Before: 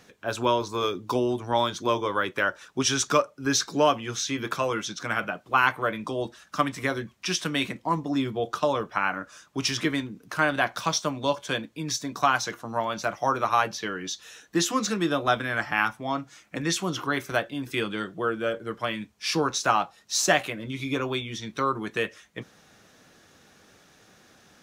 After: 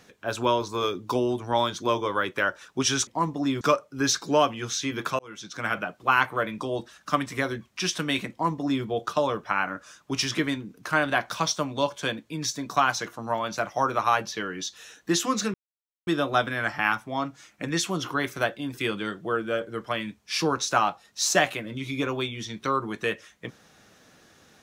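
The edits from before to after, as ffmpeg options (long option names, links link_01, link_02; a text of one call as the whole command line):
ffmpeg -i in.wav -filter_complex "[0:a]asplit=5[link_01][link_02][link_03][link_04][link_05];[link_01]atrim=end=3.072[link_06];[link_02]atrim=start=7.768:end=8.312[link_07];[link_03]atrim=start=3.068:end=4.65,asetpts=PTS-STARTPTS,afade=type=out:start_time=1.578:duration=0.004:curve=hsin[link_08];[link_04]atrim=start=4.65:end=15,asetpts=PTS-STARTPTS,afade=type=in:duration=0.5,afade=type=out:start_time=10.346:duration=0.004:curve=hsin,apad=pad_dur=0.53[link_09];[link_05]atrim=start=15,asetpts=PTS-STARTPTS,afade=type=in:duration=0.004:curve=hsin[link_10];[link_06][link_07]acrossfade=duration=0.004:curve1=hsin:curve2=hsin[link_11];[link_08][link_09][link_10]concat=n=3:v=0:a=1[link_12];[link_11][link_12]acrossfade=duration=0.004:curve1=hsin:curve2=hsin" out.wav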